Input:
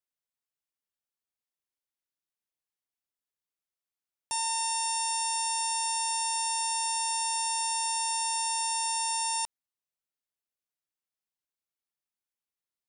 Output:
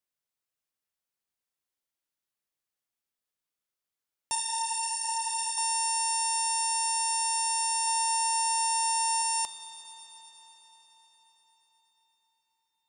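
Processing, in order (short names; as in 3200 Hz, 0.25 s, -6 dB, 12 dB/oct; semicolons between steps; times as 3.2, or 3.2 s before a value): 7.87–9.22 low shelf 500 Hz +11 dB; reverb RT60 5.5 s, pre-delay 9 ms, DRR 5 dB; 4.35–5.58 ensemble effect; gain +2 dB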